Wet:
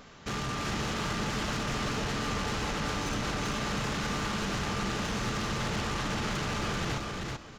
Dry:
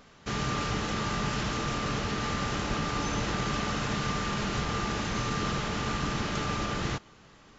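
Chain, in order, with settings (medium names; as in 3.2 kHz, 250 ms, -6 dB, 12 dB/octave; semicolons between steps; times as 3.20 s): peak limiter -23 dBFS, peak gain reduction 5.5 dB; saturation -34 dBFS, distortion -10 dB; feedback delay 385 ms, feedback 16%, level -3 dB; trim +4 dB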